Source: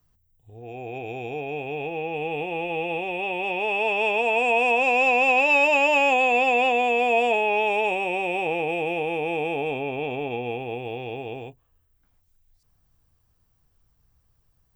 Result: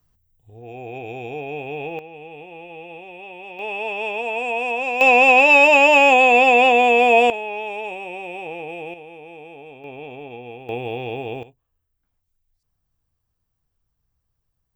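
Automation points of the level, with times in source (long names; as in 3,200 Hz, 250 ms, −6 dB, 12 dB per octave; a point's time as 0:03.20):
+1 dB
from 0:01.99 −10 dB
from 0:03.59 −3 dB
from 0:05.01 +7 dB
from 0:07.30 −6 dB
from 0:08.94 −13.5 dB
from 0:09.84 −7 dB
from 0:10.69 +4.5 dB
from 0:11.43 −8.5 dB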